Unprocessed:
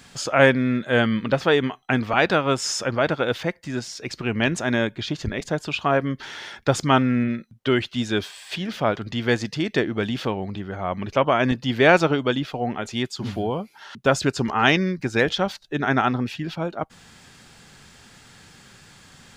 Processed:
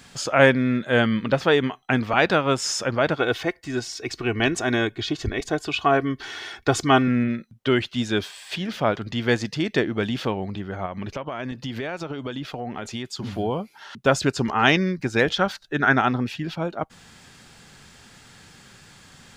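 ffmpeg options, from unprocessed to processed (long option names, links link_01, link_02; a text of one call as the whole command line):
ffmpeg -i in.wav -filter_complex "[0:a]asettb=1/sr,asplit=3[link_01][link_02][link_03];[link_01]atrim=end=3.164[link_04];[link_02]atrim=start=3.16:end=7.08,asetpts=PTS-STARTPTS,afade=type=in:duration=0.004:curve=qsin,afade=type=out:start_time=3.916:duration=0.004:curve=qsin,aecho=1:1:2.7:0.59,atrim=end_sample=172872[link_05];[link_03]atrim=start=7.076[link_06];[link_04][link_05]acrossfade=duration=0.004:curve1=hsin:curve2=qsin[link_07];[link_07][link_06]acrossfade=duration=0.004:curve1=qsin:curve2=hsin,asplit=3[link_08][link_09][link_10];[link_08]afade=type=out:start_time=10.85:duration=0.02[link_11];[link_09]acompressor=threshold=-26dB:ratio=12:attack=3.2:release=140:knee=1:detection=peak,afade=type=in:start_time=10.85:duration=0.02,afade=type=out:start_time=13.37:duration=0.02[link_12];[link_10]afade=type=in:start_time=13.37:duration=0.02[link_13];[link_11][link_12][link_13]amix=inputs=3:normalize=0,asettb=1/sr,asplit=3[link_14][link_15][link_16];[link_14]atrim=end=15.384[link_17];[link_15]atrim=start=15.38:end=15.96,asetpts=PTS-STARTPTS,afade=type=in:duration=0.004:curve=qsin,afade=type=out:start_time=0.576:duration=0.004:curve=qsin,equalizer=frequency=1500:width=2.8:gain=8[link_18];[link_16]atrim=start=15.956[link_19];[link_17][link_18]acrossfade=duration=0.004:curve1=hsin:curve2=qsin[link_20];[link_20][link_19]acrossfade=duration=0.004:curve1=qsin:curve2=hsin" out.wav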